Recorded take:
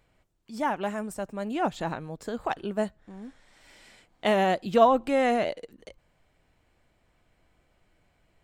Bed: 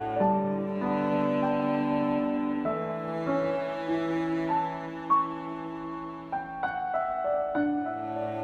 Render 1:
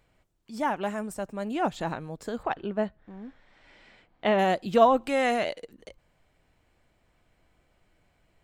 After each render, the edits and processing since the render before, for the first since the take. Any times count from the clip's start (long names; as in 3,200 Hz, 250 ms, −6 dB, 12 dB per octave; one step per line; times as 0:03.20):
0:00.93–0:01.70: floating-point word with a short mantissa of 8 bits
0:02.43–0:04.39: low-pass filter 3,200 Hz
0:04.97–0:05.62: tilt shelving filter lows −3.5 dB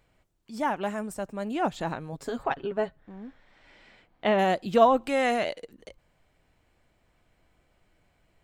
0:02.12–0:03.00: comb filter 7.3 ms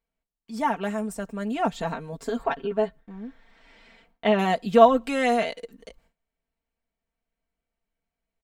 noise gate with hold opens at −51 dBFS
comb filter 4.4 ms, depth 79%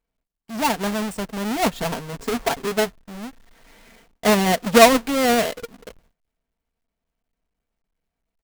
each half-wave held at its own peak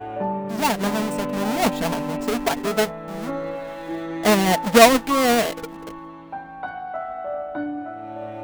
mix in bed −1 dB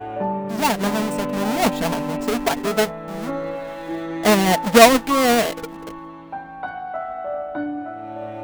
level +1.5 dB